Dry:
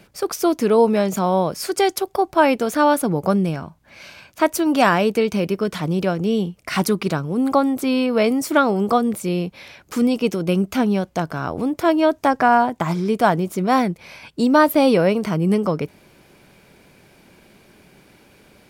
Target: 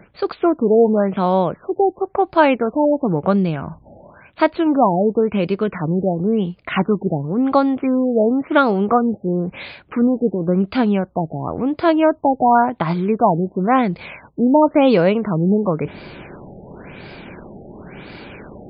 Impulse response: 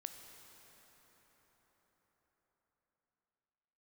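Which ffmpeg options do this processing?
-af "areverse,acompressor=mode=upward:threshold=-25dB:ratio=2.5,areverse,afftfilt=real='re*lt(b*sr/1024,840*pow(5100/840,0.5+0.5*sin(2*PI*0.95*pts/sr)))':imag='im*lt(b*sr/1024,840*pow(5100/840,0.5+0.5*sin(2*PI*0.95*pts/sr)))':win_size=1024:overlap=0.75,volume=2dB"

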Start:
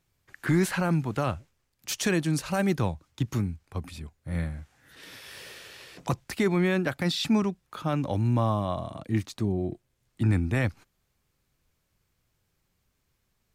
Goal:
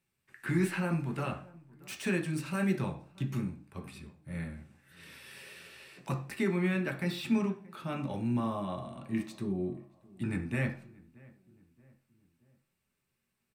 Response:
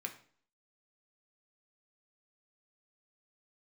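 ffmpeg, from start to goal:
-filter_complex "[0:a]acrossover=split=2800[a][b];[b]asoftclip=type=tanh:threshold=-35.5dB[c];[a][c]amix=inputs=2:normalize=0,asplit=2[d][e];[e]adelay=628,lowpass=f=1.5k:p=1,volume=-23dB,asplit=2[f][g];[g]adelay=628,lowpass=f=1.5k:p=1,volume=0.49,asplit=2[h][i];[i]adelay=628,lowpass=f=1.5k:p=1,volume=0.49[j];[d][f][h][j]amix=inputs=4:normalize=0[k];[1:a]atrim=start_sample=2205,asetrate=48510,aresample=44100[l];[k][l]afir=irnorm=-1:irlink=0,volume=-3dB"

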